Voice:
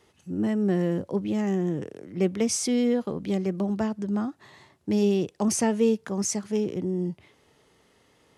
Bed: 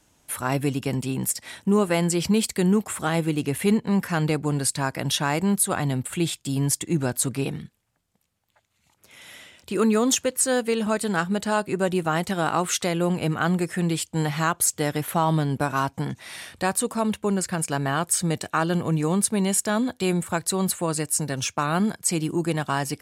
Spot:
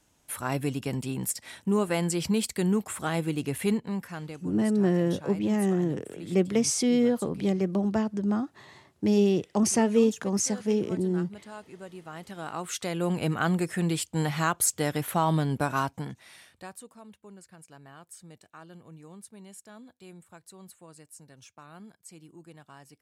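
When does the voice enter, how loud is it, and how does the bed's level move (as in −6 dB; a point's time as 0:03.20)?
4.15 s, +0.5 dB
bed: 0:03.68 −5 dB
0:04.49 −20 dB
0:11.99 −20 dB
0:13.17 −3 dB
0:15.78 −3 dB
0:17.01 −25 dB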